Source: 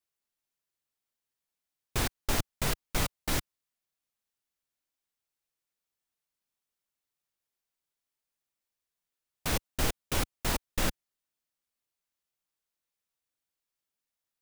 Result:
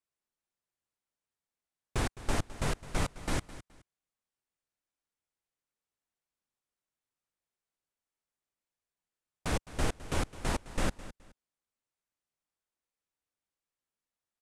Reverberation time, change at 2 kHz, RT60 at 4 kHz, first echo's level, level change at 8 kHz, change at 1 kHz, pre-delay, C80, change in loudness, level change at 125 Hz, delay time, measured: no reverb, -3.0 dB, no reverb, -16.0 dB, -6.0 dB, -1.0 dB, no reverb, no reverb, -3.0 dB, 0.0 dB, 211 ms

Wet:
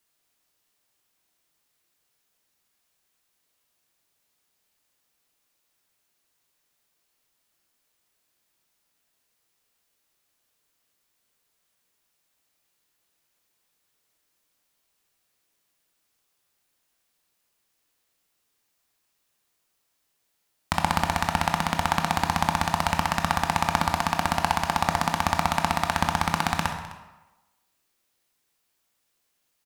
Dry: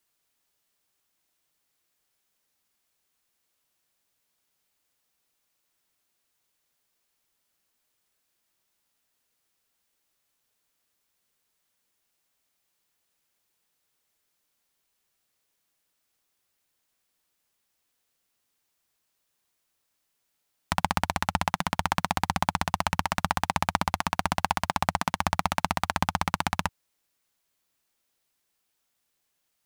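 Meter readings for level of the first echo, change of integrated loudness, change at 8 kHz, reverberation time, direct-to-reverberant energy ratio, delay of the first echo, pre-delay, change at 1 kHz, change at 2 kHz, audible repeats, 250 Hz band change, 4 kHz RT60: -18.0 dB, +3.0 dB, +2.5 dB, 1.1 s, 4.0 dB, 257 ms, 17 ms, +3.0 dB, +3.0 dB, 1, +3.0 dB, 0.85 s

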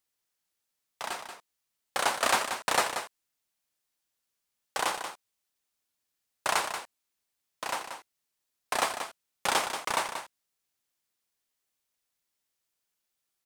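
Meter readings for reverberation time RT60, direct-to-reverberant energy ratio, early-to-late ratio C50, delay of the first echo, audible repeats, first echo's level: no reverb, no reverb, no reverb, 183 ms, 1, -8.5 dB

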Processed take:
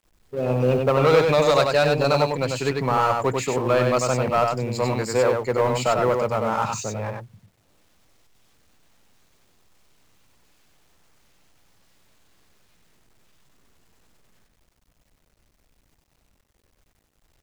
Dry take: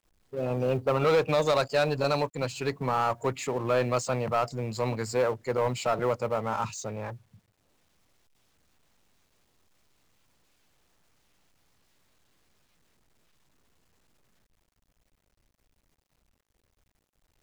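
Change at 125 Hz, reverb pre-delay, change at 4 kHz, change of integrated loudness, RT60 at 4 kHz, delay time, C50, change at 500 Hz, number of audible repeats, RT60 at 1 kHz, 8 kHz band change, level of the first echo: +7.0 dB, no reverb, +7.0 dB, +7.0 dB, no reverb, 95 ms, no reverb, +7.0 dB, 1, no reverb, +7.0 dB, -4.0 dB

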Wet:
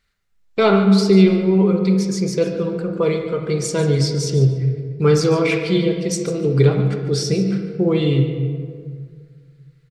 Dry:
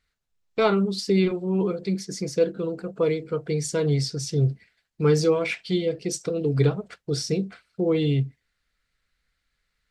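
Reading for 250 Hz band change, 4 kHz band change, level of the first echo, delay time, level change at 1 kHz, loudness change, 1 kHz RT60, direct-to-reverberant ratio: +9.0 dB, +6.0 dB, -13.5 dB, 145 ms, +6.5 dB, +7.0 dB, 1.8 s, 3.0 dB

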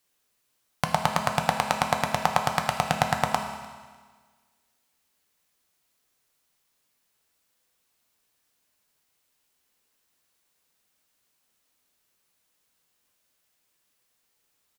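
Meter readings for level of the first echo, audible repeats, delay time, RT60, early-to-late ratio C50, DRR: -22.0 dB, 1, 300 ms, 1.5 s, 6.5 dB, 3.5 dB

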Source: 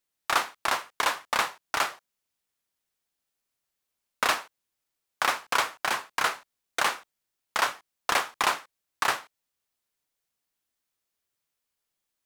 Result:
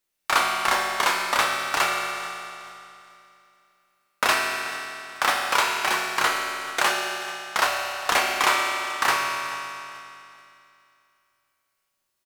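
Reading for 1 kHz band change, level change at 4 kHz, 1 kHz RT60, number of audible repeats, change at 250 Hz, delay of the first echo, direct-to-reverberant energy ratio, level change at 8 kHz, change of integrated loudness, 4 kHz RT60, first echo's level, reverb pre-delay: +5.0 dB, +6.0 dB, 2.8 s, 1, +6.5 dB, 434 ms, -1.5 dB, +5.5 dB, +4.5 dB, 2.7 s, -17.5 dB, 5 ms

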